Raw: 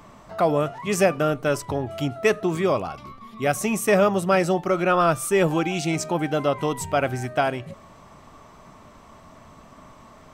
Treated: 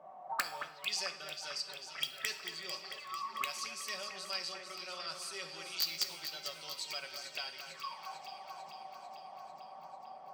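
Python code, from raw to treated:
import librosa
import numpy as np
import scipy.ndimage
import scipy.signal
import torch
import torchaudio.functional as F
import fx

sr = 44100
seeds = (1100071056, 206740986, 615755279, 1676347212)

p1 = x + 0.62 * np.pad(x, (int(5.3 * sr / 1000.0), 0))[:len(x)]
p2 = fx.rider(p1, sr, range_db=3, speed_s=2.0)
p3 = p1 + F.gain(torch.from_numpy(p2), -2.0).numpy()
p4 = fx.auto_wah(p3, sr, base_hz=610.0, top_hz=4600.0, q=17.0, full_db=-16.5, direction='up')
p5 = (np.mod(10.0 ** (27.5 / 20.0) * p4 + 1.0, 2.0) - 1.0) / 10.0 ** (27.5 / 20.0)
p6 = p5 + fx.echo_alternate(p5, sr, ms=223, hz=2400.0, feedback_pct=80, wet_db=-7.0, dry=0)
p7 = fx.rev_fdn(p6, sr, rt60_s=0.87, lf_ratio=0.8, hf_ratio=0.85, size_ms=37.0, drr_db=7.5)
y = F.gain(torch.from_numpy(p7), 5.0).numpy()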